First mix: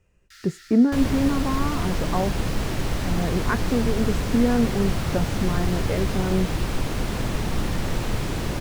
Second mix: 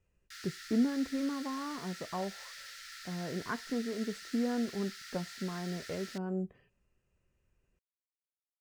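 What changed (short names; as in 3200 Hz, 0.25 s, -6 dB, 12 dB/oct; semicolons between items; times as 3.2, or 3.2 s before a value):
speech -11.5 dB; second sound: muted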